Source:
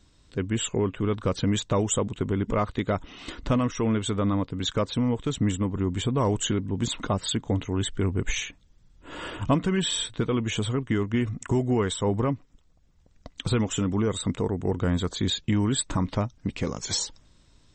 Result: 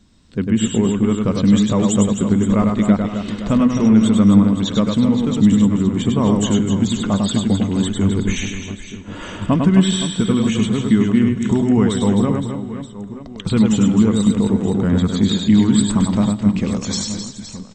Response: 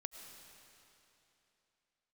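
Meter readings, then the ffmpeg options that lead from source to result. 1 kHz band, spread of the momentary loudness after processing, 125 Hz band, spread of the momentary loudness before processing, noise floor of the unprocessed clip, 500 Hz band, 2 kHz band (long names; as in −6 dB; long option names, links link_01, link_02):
+5.0 dB, 13 LU, +8.5 dB, 6 LU, −60 dBFS, +5.5 dB, +4.5 dB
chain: -filter_complex "[0:a]equalizer=frequency=210:width_type=o:width=0.5:gain=13,aecho=1:1:100|260|516|925.6|1581:0.631|0.398|0.251|0.158|0.1,asplit=2[link_01][link_02];[1:a]atrim=start_sample=2205[link_03];[link_02][link_03]afir=irnorm=-1:irlink=0,volume=-5.5dB[link_04];[link_01][link_04]amix=inputs=2:normalize=0"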